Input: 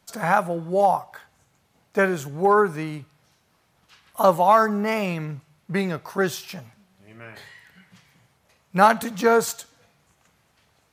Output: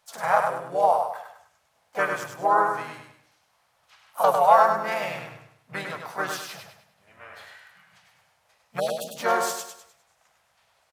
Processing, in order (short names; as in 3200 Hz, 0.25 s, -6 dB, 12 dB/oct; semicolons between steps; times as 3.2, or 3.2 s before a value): spectral delete 8.8–9.17, 650–3100 Hz; harmoniser -4 st -3 dB, +4 st -13 dB; resonant low shelf 470 Hz -11.5 dB, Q 1.5; on a send: feedback echo 0.101 s, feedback 38%, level -5 dB; on the sum: gain -5 dB